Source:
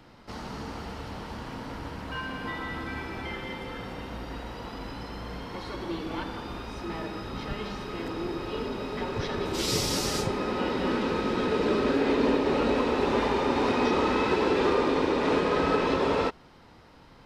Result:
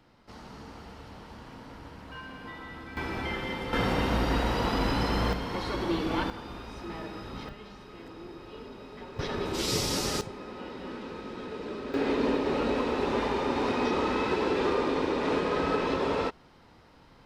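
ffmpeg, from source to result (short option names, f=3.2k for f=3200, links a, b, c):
-af "asetnsamples=n=441:p=0,asendcmd='2.97 volume volume 2.5dB;3.73 volume volume 11dB;5.33 volume volume 4.5dB;6.3 volume volume -4dB;7.49 volume volume -11.5dB;9.19 volume volume -1.5dB;10.21 volume volume -12dB;11.94 volume volume -3dB',volume=-8dB"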